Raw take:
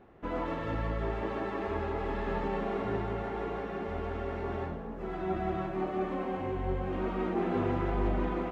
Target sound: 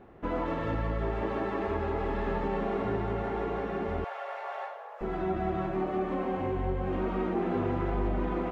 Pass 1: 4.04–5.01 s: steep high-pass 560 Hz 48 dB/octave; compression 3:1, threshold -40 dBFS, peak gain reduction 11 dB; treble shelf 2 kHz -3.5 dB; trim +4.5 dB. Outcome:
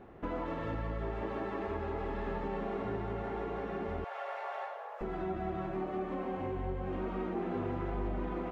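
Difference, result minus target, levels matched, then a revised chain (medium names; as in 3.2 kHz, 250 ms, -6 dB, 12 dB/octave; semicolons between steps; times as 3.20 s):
compression: peak gain reduction +6 dB
4.04–5.01 s: steep high-pass 560 Hz 48 dB/octave; compression 3:1, threshold -31 dBFS, peak gain reduction 5 dB; treble shelf 2 kHz -3.5 dB; trim +4.5 dB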